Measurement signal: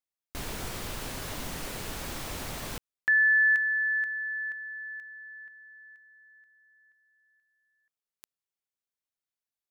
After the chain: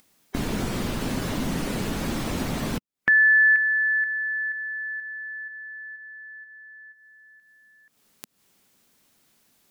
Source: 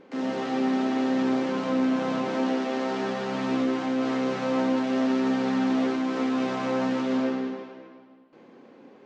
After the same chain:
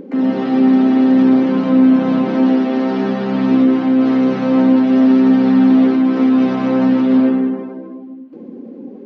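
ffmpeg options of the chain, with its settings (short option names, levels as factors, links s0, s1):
-filter_complex "[0:a]afftdn=nr=16:nf=-47,asplit=2[s0][s1];[s1]acompressor=mode=upward:threshold=0.0398:ratio=2.5:attack=11:release=201:knee=2.83:detection=peak,volume=0.75[s2];[s0][s2]amix=inputs=2:normalize=0,equalizer=f=220:t=o:w=1.4:g=11"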